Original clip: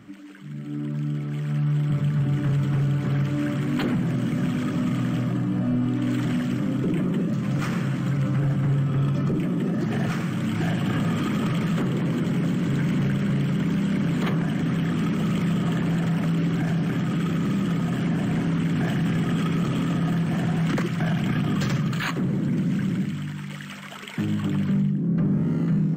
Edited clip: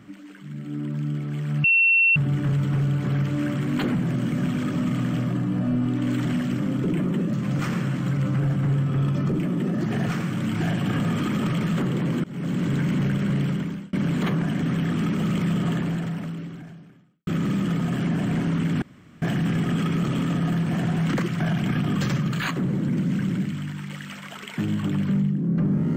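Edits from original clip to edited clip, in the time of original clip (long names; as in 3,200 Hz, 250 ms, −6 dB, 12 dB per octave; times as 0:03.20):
0:01.64–0:02.16: beep over 2,710 Hz −14.5 dBFS
0:12.24–0:12.58: fade in, from −23.5 dB
0:13.47–0:13.93: fade out
0:15.70–0:17.27: fade out quadratic
0:18.82: splice in room tone 0.40 s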